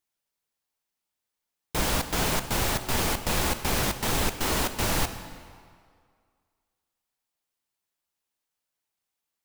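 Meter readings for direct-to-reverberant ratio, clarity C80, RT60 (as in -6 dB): 9.0 dB, 11.5 dB, 2.1 s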